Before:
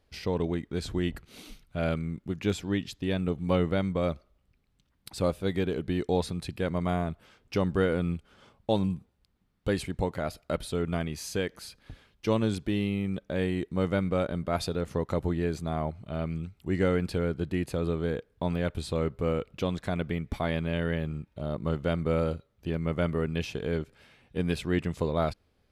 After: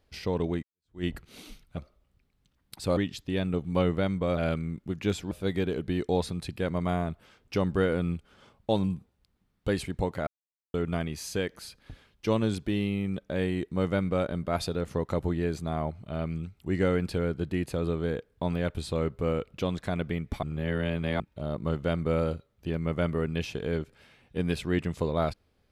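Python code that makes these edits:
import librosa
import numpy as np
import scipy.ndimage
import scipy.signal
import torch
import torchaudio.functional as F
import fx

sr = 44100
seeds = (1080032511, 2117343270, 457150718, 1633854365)

y = fx.edit(x, sr, fx.fade_in_span(start_s=0.63, length_s=0.41, curve='exp'),
    fx.swap(start_s=1.77, length_s=0.94, other_s=4.11, other_length_s=1.2),
    fx.silence(start_s=10.27, length_s=0.47),
    fx.reverse_span(start_s=20.43, length_s=0.77), tone=tone)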